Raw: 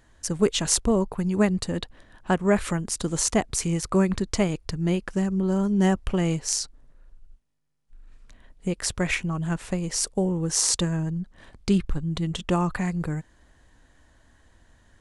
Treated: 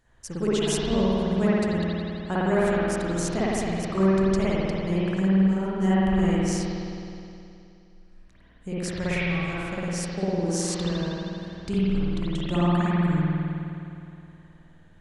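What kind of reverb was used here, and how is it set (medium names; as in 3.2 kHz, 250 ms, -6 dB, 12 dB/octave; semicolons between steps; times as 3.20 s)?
spring tank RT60 2.7 s, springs 52 ms, chirp 40 ms, DRR -10 dB; trim -9.5 dB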